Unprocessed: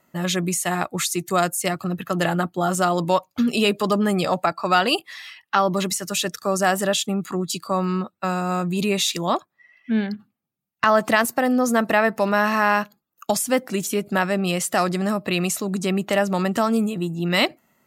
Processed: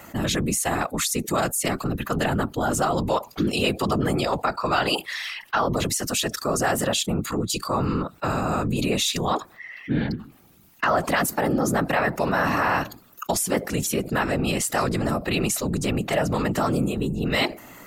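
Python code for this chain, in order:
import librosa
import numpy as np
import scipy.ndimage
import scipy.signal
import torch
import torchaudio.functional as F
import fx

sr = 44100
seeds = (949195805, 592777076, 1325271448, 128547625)

y = fx.whisperise(x, sr, seeds[0])
y = fx.env_flatten(y, sr, amount_pct=50)
y = y * 10.0 ** (-5.5 / 20.0)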